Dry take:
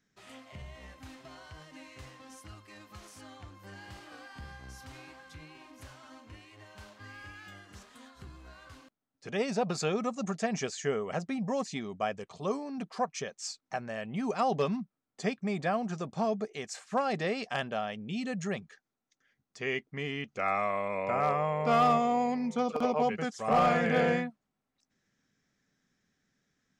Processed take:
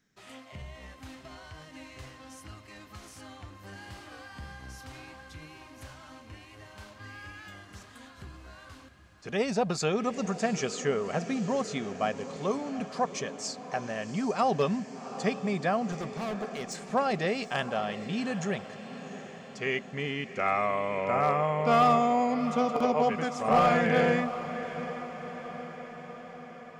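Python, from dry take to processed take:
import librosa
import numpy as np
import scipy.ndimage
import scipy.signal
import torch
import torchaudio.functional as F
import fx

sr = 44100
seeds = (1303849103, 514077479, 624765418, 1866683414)

y = fx.clip_hard(x, sr, threshold_db=-35.0, at=(15.92, 16.76))
y = fx.echo_diffused(y, sr, ms=754, feedback_pct=62, wet_db=-12.5)
y = y * 10.0 ** (2.5 / 20.0)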